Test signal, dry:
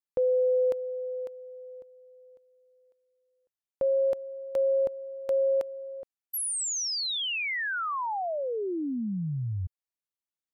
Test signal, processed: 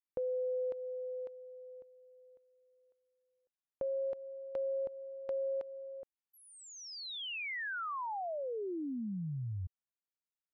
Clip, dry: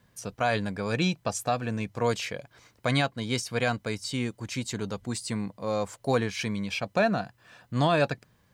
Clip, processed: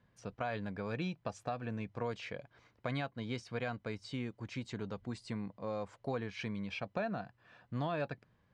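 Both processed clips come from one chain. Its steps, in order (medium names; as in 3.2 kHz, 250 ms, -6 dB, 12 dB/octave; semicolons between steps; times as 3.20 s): Bessel low-pass 2.7 kHz, order 2; compression 2.5:1, threshold -29 dBFS; trim -6.5 dB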